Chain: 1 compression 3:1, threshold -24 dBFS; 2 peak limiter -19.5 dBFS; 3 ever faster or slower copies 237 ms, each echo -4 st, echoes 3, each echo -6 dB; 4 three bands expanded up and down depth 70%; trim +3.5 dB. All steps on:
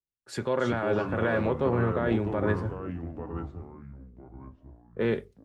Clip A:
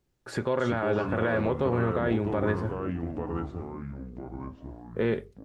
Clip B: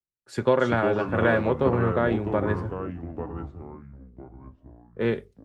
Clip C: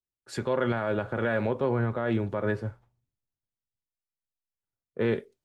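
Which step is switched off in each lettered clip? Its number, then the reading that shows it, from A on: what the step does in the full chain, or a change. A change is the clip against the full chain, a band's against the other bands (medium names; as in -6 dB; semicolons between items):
4, momentary loudness spread change -6 LU; 2, mean gain reduction 2.0 dB; 3, momentary loudness spread change -13 LU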